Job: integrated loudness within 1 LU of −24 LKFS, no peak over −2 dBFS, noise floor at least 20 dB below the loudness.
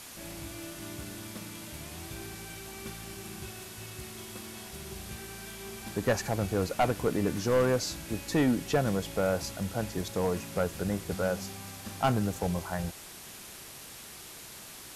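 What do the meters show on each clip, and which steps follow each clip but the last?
share of clipped samples 0.6%; peaks flattened at −19.5 dBFS; background noise floor −47 dBFS; target noise floor −53 dBFS; integrated loudness −32.5 LKFS; sample peak −19.5 dBFS; target loudness −24.0 LKFS
→ clipped peaks rebuilt −19.5 dBFS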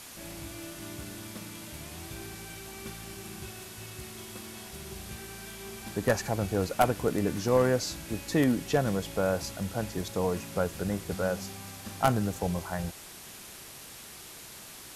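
share of clipped samples 0.0%; background noise floor −47 dBFS; target noise floor −52 dBFS
→ broadband denoise 6 dB, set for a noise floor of −47 dBFS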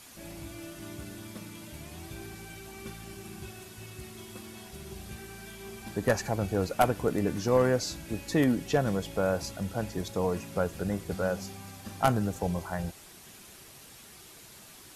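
background noise floor −51 dBFS; integrated loudness −30.0 LKFS; sample peak −10.5 dBFS; target loudness −24.0 LKFS
→ level +6 dB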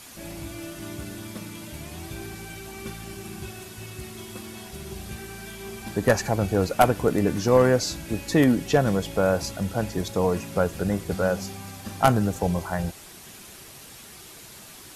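integrated loudness −24.0 LKFS; sample peak −4.5 dBFS; background noise floor −45 dBFS

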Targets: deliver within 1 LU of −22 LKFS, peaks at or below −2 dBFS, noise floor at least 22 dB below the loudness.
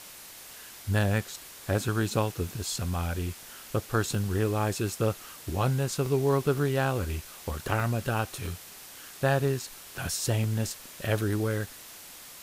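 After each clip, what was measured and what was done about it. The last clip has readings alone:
number of dropouts 6; longest dropout 1.2 ms; background noise floor −47 dBFS; target noise floor −52 dBFS; integrated loudness −29.5 LKFS; sample peak −11.0 dBFS; target loudness −22.0 LKFS
→ repair the gap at 0:04.15/0:06.06/0:06.58/0:07.80/0:08.46/0:10.44, 1.2 ms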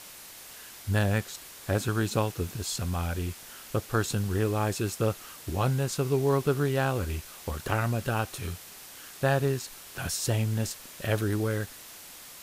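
number of dropouts 0; background noise floor −47 dBFS; target noise floor −52 dBFS
→ broadband denoise 6 dB, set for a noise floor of −47 dBFS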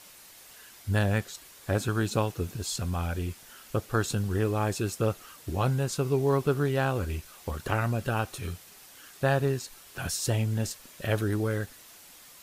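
background noise floor −52 dBFS; integrated loudness −29.5 LKFS; sample peak −11.0 dBFS; target loudness −22.0 LKFS
→ level +7.5 dB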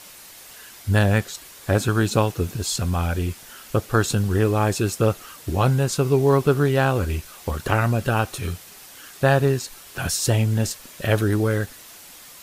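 integrated loudness −22.0 LKFS; sample peak −3.5 dBFS; background noise floor −44 dBFS

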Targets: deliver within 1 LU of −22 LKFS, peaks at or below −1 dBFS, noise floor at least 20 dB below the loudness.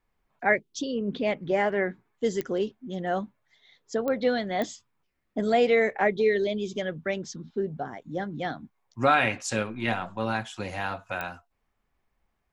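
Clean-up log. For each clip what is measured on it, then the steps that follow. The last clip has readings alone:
number of clicks 4; integrated loudness −28.0 LKFS; sample peak −9.0 dBFS; target loudness −22.0 LKFS
→ click removal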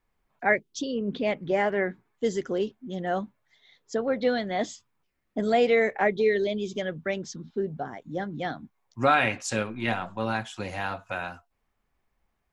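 number of clicks 0; integrated loudness −28.0 LKFS; sample peak −9.0 dBFS; target loudness −22.0 LKFS
→ level +6 dB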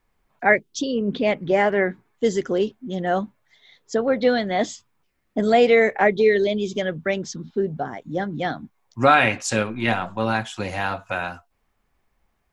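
integrated loudness −22.0 LKFS; sample peak −3.0 dBFS; background noise floor −70 dBFS

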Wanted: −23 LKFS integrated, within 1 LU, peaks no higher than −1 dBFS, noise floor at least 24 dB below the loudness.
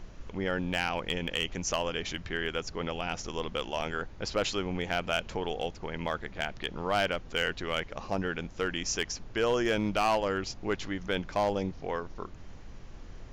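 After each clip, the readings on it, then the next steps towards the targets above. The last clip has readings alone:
share of clipped samples 0.4%; peaks flattened at −20.0 dBFS; background noise floor −47 dBFS; target noise floor −56 dBFS; integrated loudness −32.0 LKFS; sample peak −20.0 dBFS; target loudness −23.0 LKFS
→ clipped peaks rebuilt −20 dBFS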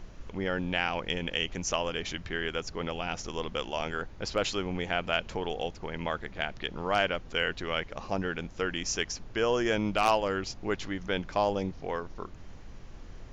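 share of clipped samples 0.0%; background noise floor −47 dBFS; target noise floor −56 dBFS
→ noise reduction from a noise print 9 dB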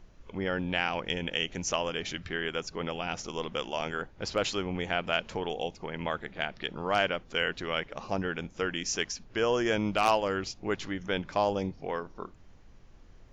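background noise floor −54 dBFS; target noise floor −56 dBFS
→ noise reduction from a noise print 6 dB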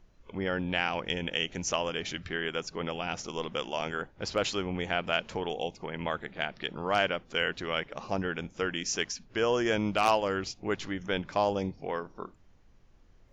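background noise floor −59 dBFS; integrated loudness −31.5 LKFS; sample peak −11.0 dBFS; target loudness −23.0 LKFS
→ level +8.5 dB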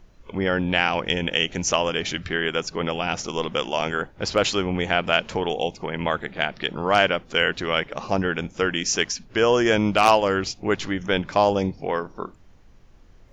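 integrated loudness −23.0 LKFS; sample peak −2.5 dBFS; background noise floor −51 dBFS

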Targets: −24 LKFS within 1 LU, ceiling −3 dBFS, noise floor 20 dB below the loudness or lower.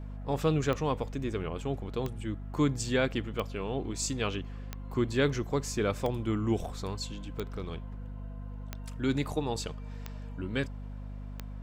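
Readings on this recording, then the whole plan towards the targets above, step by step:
number of clicks 9; mains hum 50 Hz; hum harmonics up to 250 Hz; level of the hum −38 dBFS; integrated loudness −33.0 LKFS; sample peak −14.5 dBFS; target loudness −24.0 LKFS
→ click removal
mains-hum notches 50/100/150/200/250 Hz
level +9 dB

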